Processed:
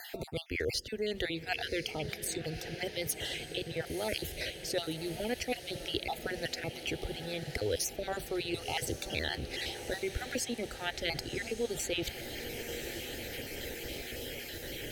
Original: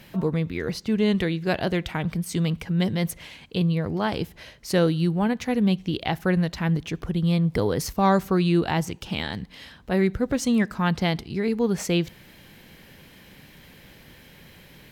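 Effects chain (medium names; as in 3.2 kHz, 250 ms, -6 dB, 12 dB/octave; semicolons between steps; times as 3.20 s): random holes in the spectrogram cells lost 35%; dynamic bell 310 Hz, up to -6 dB, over -37 dBFS, Q 1.1; reverse; compression, threshold -35 dBFS, peak gain reduction 16.5 dB; reverse; static phaser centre 440 Hz, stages 4; echo that smears into a reverb 1044 ms, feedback 67%, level -12.5 dB; three bands compressed up and down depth 40%; trim +8.5 dB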